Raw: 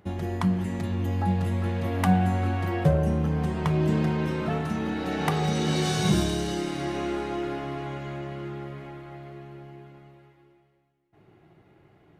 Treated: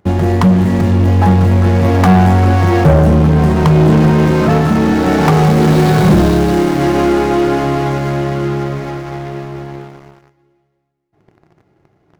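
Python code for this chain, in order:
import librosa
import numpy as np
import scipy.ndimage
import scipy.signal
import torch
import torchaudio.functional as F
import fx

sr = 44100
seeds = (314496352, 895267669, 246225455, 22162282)

y = scipy.signal.medfilt(x, 15)
y = fx.leveller(y, sr, passes=3)
y = y * 10.0 ** (7.5 / 20.0)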